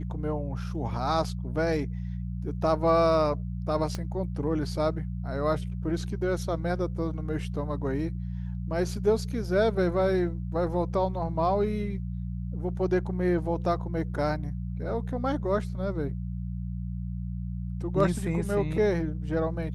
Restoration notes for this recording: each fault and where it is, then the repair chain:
mains hum 60 Hz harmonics 3 −33 dBFS
0:03.95: click −19 dBFS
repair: click removal
hum removal 60 Hz, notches 3

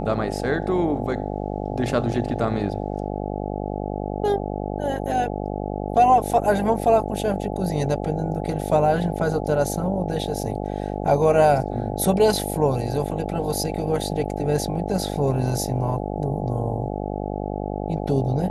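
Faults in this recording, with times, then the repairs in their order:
mains buzz 50 Hz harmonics 17 −28 dBFS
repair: hum removal 50 Hz, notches 17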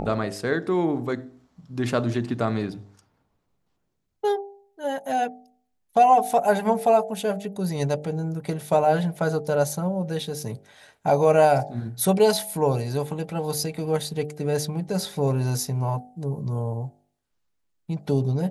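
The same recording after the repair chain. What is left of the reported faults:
none of them is left

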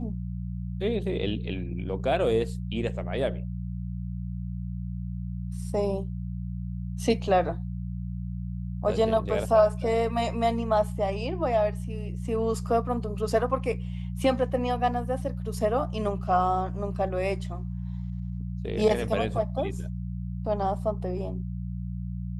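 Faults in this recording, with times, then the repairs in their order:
mains hum 60 Hz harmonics 3 −33 dBFS
0:14.24: drop-out 3.2 ms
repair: hum removal 60 Hz, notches 3
repair the gap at 0:14.24, 3.2 ms

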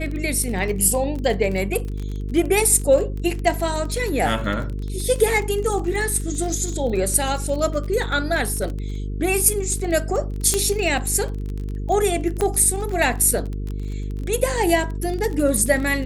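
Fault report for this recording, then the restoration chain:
mains buzz 50 Hz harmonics 9 −27 dBFS
surface crackle 26 per second −26 dBFS
0:10.54: click −5 dBFS
0:12.41: click −8 dBFS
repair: click removal
hum removal 50 Hz, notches 9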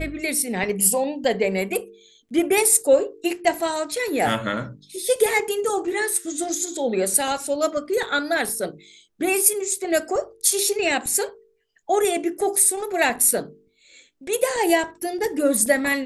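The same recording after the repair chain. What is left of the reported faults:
none of them is left

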